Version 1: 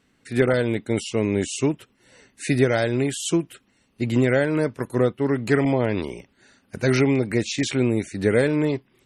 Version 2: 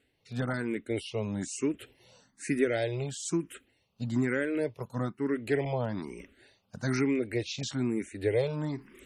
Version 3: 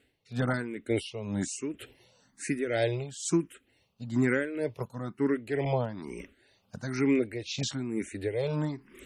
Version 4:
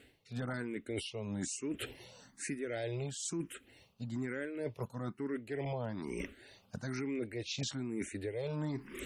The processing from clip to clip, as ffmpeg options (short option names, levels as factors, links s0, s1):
-filter_complex "[0:a]areverse,acompressor=mode=upward:threshold=0.0282:ratio=2.5,areverse,asplit=2[s0][s1];[s1]afreqshift=1.1[s2];[s0][s2]amix=inputs=2:normalize=1,volume=0.473"
-af "tremolo=f=2.1:d=0.68,volume=1.58"
-af "alimiter=level_in=1.12:limit=0.0631:level=0:latency=1:release=343,volume=0.891,areverse,acompressor=threshold=0.00631:ratio=4,areverse,volume=2.24"